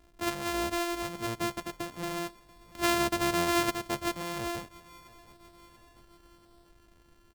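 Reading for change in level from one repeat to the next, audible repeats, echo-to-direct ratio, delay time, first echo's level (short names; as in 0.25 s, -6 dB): -4.5 dB, 3, -20.5 dB, 0.687 s, -22.0 dB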